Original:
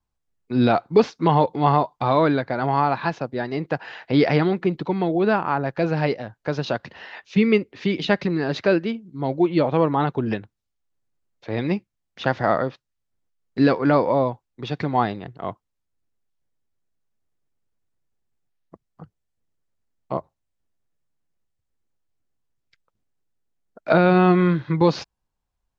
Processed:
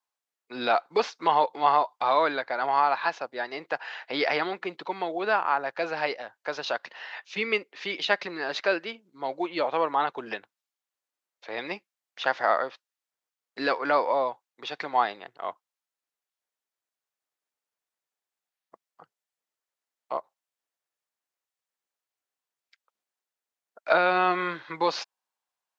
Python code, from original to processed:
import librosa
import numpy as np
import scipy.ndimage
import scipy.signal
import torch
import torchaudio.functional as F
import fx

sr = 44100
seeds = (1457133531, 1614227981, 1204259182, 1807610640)

y = scipy.signal.sosfilt(scipy.signal.butter(2, 720.0, 'highpass', fs=sr, output='sos'), x)